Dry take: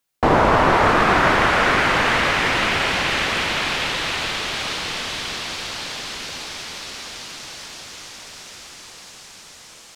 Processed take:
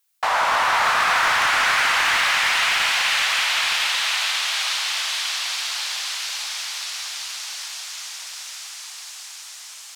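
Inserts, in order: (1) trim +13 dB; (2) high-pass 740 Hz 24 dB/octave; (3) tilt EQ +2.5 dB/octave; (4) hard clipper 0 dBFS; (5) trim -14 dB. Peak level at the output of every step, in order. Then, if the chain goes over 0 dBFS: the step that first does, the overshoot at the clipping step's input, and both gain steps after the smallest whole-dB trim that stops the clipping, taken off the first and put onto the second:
+9.5 dBFS, +6.5 dBFS, +9.0 dBFS, 0.0 dBFS, -14.0 dBFS; step 1, 9.0 dB; step 1 +4 dB, step 5 -5 dB

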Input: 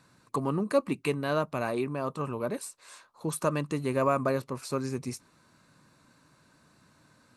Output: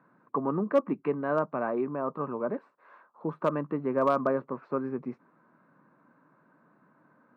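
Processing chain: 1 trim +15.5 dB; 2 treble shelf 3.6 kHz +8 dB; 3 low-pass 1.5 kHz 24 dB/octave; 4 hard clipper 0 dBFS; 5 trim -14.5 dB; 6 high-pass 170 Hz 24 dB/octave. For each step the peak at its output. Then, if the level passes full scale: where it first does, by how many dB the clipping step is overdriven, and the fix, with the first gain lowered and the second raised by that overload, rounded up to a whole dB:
+3.0 dBFS, +3.5 dBFS, +3.0 dBFS, 0.0 dBFS, -14.5 dBFS, -11.5 dBFS; step 1, 3.0 dB; step 1 +12.5 dB, step 5 -11.5 dB

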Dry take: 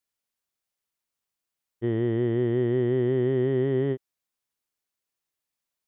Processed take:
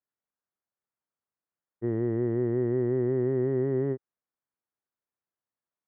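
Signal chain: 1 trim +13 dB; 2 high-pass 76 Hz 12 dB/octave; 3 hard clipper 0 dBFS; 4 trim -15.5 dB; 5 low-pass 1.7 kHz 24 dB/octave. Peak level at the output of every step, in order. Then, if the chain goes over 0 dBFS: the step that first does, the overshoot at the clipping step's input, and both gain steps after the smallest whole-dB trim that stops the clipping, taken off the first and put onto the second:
-2.5 dBFS, -2.0 dBFS, -2.0 dBFS, -17.5 dBFS, -17.5 dBFS; nothing clips

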